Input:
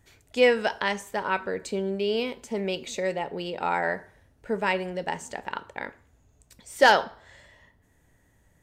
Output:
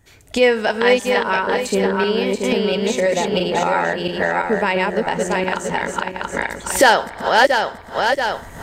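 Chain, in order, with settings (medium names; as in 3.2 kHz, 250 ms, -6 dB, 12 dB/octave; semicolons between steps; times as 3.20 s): backward echo that repeats 340 ms, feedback 52%, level -1 dB; recorder AGC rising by 29 dB/s; trim +5 dB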